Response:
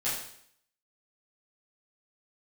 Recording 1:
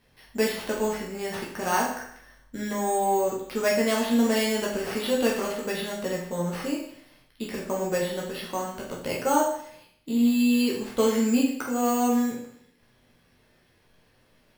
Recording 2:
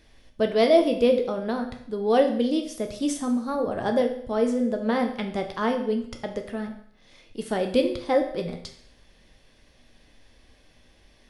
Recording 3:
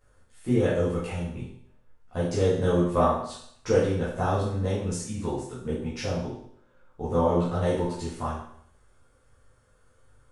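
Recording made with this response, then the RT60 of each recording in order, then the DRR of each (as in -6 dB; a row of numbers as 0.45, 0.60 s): 3; 0.65, 0.65, 0.65 s; -4.0, 4.0, -10.5 dB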